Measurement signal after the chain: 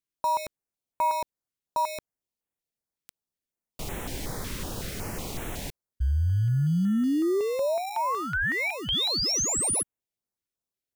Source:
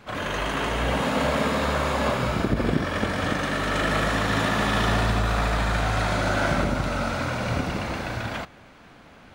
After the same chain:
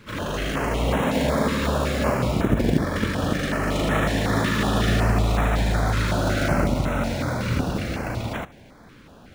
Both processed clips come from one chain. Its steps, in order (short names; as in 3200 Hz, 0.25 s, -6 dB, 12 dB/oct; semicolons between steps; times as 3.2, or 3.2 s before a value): in parallel at -9 dB: sample-and-hold 28×; on the sum: stepped notch 5.4 Hz 730–4700 Hz; gain +1 dB